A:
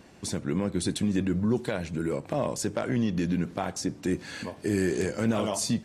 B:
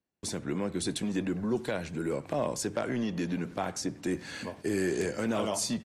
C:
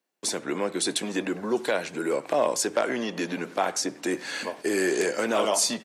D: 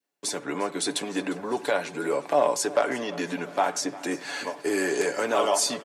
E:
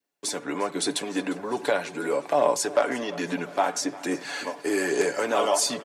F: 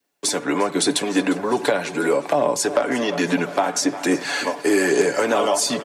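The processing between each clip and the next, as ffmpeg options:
-filter_complex "[0:a]agate=range=0.0178:threshold=0.00562:ratio=16:detection=peak,acrossover=split=230|1200|2300[s0][s1][s2][s3];[s0]asoftclip=type=tanh:threshold=0.0141[s4];[s2]aecho=1:1:98:0.316[s5];[s4][s1][s5][s3]amix=inputs=4:normalize=0,volume=0.841"
-af "highpass=390,volume=2.66"
-af "adynamicequalizer=threshold=0.0126:dfrequency=880:dqfactor=1.1:tfrequency=880:tqfactor=1.1:attack=5:release=100:ratio=0.375:range=2.5:mode=boostabove:tftype=bell,aecho=1:1:7:0.49,aecho=1:1:352|704|1056|1408|1760:0.112|0.0651|0.0377|0.0219|0.0127,volume=0.75"
-af "aphaser=in_gain=1:out_gain=1:delay=4.2:decay=0.25:speed=1.2:type=sinusoidal"
-filter_complex "[0:a]acrossover=split=310[s0][s1];[s1]acompressor=threshold=0.0501:ratio=6[s2];[s0][s2]amix=inputs=2:normalize=0,volume=2.82"

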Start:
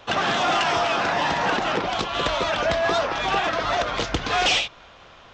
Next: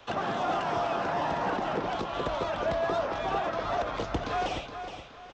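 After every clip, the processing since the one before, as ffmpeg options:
-filter_complex "[0:a]acrossover=split=230|510|1200[s0][s1][s2][s3];[s3]acompressor=threshold=0.0141:ratio=5[s4];[s0][s1][s2][s4]amix=inputs=4:normalize=0,aecho=1:1:419|838|1257|1676:0.355|0.114|0.0363|0.0116,volume=0.531"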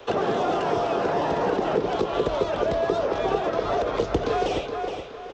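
-filter_complex "[0:a]equalizer=f=430:w=1.9:g=14.5,acrossover=split=250|3000[s0][s1][s2];[s1]acompressor=threshold=0.0501:ratio=6[s3];[s0][s3][s2]amix=inputs=3:normalize=0,volume=1.68"

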